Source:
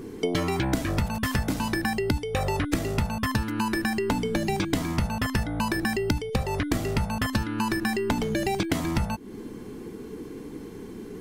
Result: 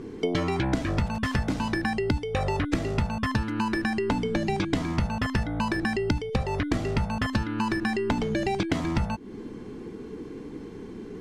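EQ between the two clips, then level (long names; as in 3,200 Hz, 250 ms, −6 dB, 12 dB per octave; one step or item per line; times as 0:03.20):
high-frequency loss of the air 79 metres
0.0 dB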